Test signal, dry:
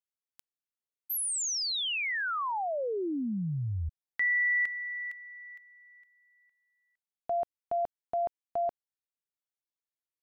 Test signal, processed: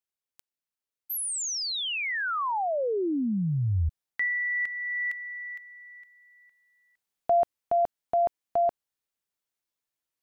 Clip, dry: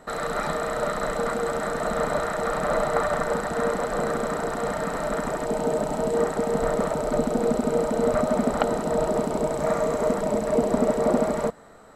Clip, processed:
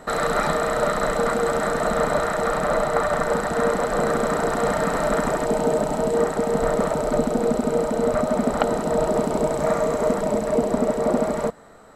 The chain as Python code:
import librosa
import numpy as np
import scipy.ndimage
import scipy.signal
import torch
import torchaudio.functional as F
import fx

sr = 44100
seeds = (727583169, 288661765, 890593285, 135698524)

y = fx.rider(x, sr, range_db=10, speed_s=0.5)
y = y * 10.0 ** (3.0 / 20.0)